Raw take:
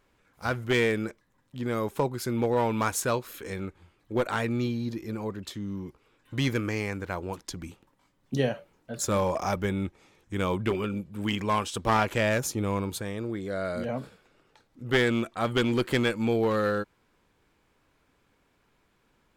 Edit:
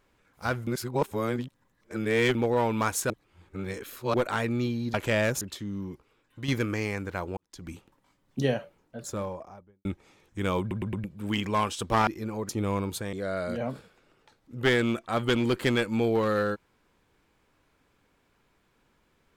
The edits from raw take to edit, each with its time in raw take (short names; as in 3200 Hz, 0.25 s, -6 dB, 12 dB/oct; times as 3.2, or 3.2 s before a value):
0.67–2.35 reverse
3.1–4.14 reverse
4.94–5.36 swap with 12.02–12.49
5.86–6.43 fade out, to -8 dB
7.32–7.64 fade in quadratic
8.45–9.8 studio fade out
10.55 stutter in place 0.11 s, 4 plays
13.13–13.41 cut